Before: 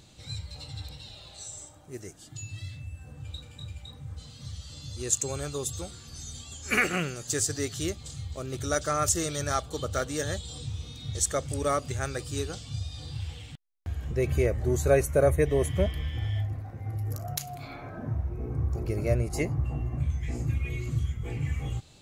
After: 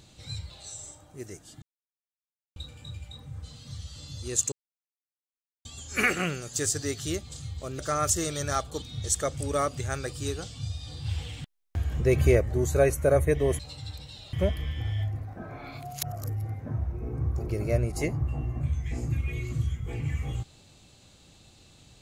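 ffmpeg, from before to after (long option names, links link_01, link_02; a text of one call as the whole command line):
ffmpeg -i in.wav -filter_complex "[0:a]asplit=14[link_01][link_02][link_03][link_04][link_05][link_06][link_07][link_08][link_09][link_10][link_11][link_12][link_13][link_14];[link_01]atrim=end=0.502[link_15];[link_02]atrim=start=1.238:end=2.36,asetpts=PTS-STARTPTS,afade=type=out:start_time=1.118:duration=0.004:curve=hsin[link_16];[link_03]atrim=start=2.36:end=3.3,asetpts=PTS-STARTPTS,volume=0[link_17];[link_04]atrim=start=3.3:end=5.26,asetpts=PTS-STARTPTS,afade=type=in:duration=0.004:curve=hsin,afade=type=out:start_time=1.956:duration=0.004:curve=hsin[link_18];[link_05]atrim=start=5.26:end=6.39,asetpts=PTS-STARTPTS,volume=0[link_19];[link_06]atrim=start=6.39:end=8.532,asetpts=PTS-STARTPTS,afade=type=in:duration=0.004:curve=hsin[link_20];[link_07]atrim=start=8.778:end=9.812[link_21];[link_08]atrim=start=10.928:end=13.172[link_22];[link_09]atrim=start=13.168:end=14.522,asetpts=PTS-STARTPTS,volume=4.5dB[link_23];[link_10]atrim=start=14.518:end=15.702[link_24];[link_11]atrim=start=0.498:end=1.242[link_25];[link_12]atrim=start=15.698:end=16.742[link_26];[link_13]atrim=start=16.738:end=18.032,asetpts=PTS-STARTPTS,areverse[link_27];[link_14]atrim=start=18.028[link_28];[link_16][link_17][link_18][link_19][link_20]concat=n=5:v=0:a=1[link_29];[link_15][link_29]acrossfade=duration=0.004:curve1=hsin:curve2=hsin[link_30];[link_30][link_21]acrossfade=duration=0.004:curve1=hsin:curve2=hsin[link_31];[link_31][link_22]acrossfade=duration=0.004:curve1=hsin:curve2=hsin[link_32];[link_32][link_23]acrossfade=duration=0.004:curve1=hsin:curve2=hsin[link_33];[link_33][link_24]acrossfade=duration=0.004:curve1=hsin:curve2=hsin[link_34];[link_34][link_25]acrossfade=duration=0.004:curve1=hsin:curve2=hsin[link_35];[link_35][link_26]acrossfade=duration=0.004:curve1=hsin:curve2=hsin[link_36];[link_36][link_27]acrossfade=duration=0.004:curve1=hsin:curve2=hsin[link_37];[link_37][link_28]acrossfade=duration=0.004:curve1=hsin:curve2=hsin" out.wav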